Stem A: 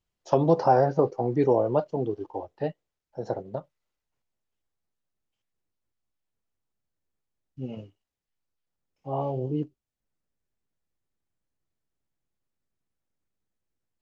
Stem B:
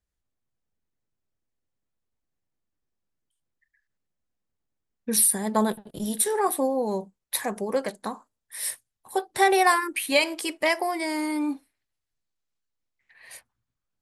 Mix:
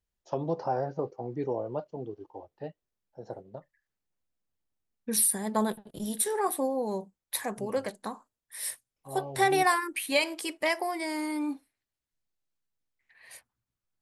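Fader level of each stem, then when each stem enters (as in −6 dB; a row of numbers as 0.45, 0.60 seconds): −10.0, −4.5 decibels; 0.00, 0.00 seconds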